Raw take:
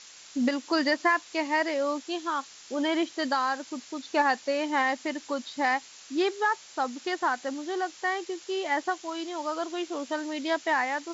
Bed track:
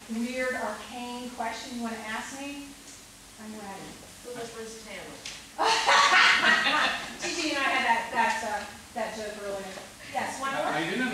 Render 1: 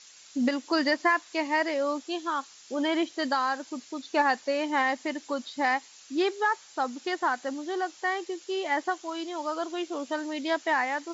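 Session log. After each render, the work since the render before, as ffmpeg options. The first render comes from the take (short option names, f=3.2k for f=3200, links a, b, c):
-af "afftdn=nr=6:nf=-50"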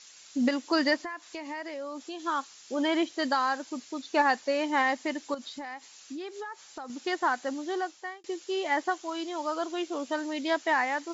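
-filter_complex "[0:a]asplit=3[a][b][c];[a]afade=t=out:st=1.02:d=0.02[d];[b]acompressor=threshold=-35dB:ratio=5:attack=3.2:release=140:knee=1:detection=peak,afade=t=in:st=1.02:d=0.02,afade=t=out:st=2.19:d=0.02[e];[c]afade=t=in:st=2.19:d=0.02[f];[d][e][f]amix=inputs=3:normalize=0,asettb=1/sr,asplit=3[g][h][i];[g]atrim=end=5.344[j];[h]atrim=start=5.34:end=6.9,asetpts=PTS-STARTPTS,afade=t=in:d=0.004:c=qsin,afade=t=out:st=1.556:d=0.004:c=qsin,acompressor=threshold=-35dB:ratio=12:attack=3.2:release=140:knee=1:detection=peak[k];[i]atrim=start=6.896[l];[j][k]acrossfade=d=0.004:c1=hsin:c2=qsin[m];[m][l]acrossfade=d=0.004:c1=qsin:c2=hsin,asplit=2[n][o];[n]atrim=end=8.24,asetpts=PTS-STARTPTS,afade=t=out:st=7.73:d=0.51[p];[o]atrim=start=8.24,asetpts=PTS-STARTPTS,afade=t=in:d=0.004:c=hsin[q];[p][q]concat=n=2:v=0:a=1"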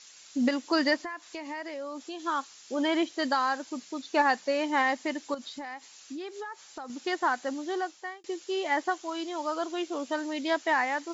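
-af "bandreject=f=94.77:t=h:w=4,bandreject=f=189.54:t=h:w=4"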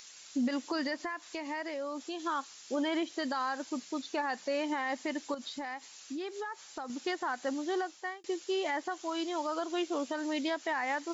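-af "alimiter=level_in=0.5dB:limit=-24dB:level=0:latency=1:release=96,volume=-0.5dB,acompressor=mode=upward:threshold=-55dB:ratio=2.5"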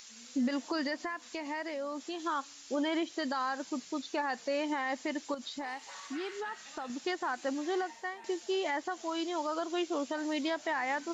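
-filter_complex "[1:a]volume=-28.5dB[a];[0:a][a]amix=inputs=2:normalize=0"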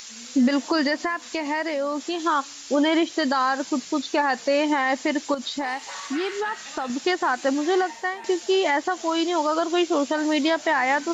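-af "volume=11.5dB"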